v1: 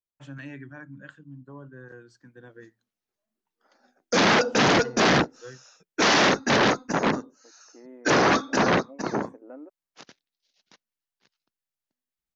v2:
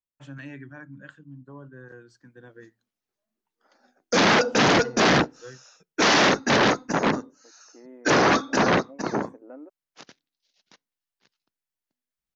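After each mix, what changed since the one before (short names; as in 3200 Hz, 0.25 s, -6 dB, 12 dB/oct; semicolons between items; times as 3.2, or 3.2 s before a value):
background: send +11.5 dB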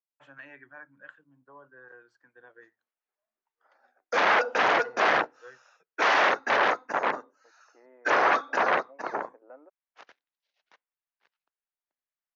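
master: add three-band isolator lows -24 dB, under 500 Hz, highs -18 dB, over 2600 Hz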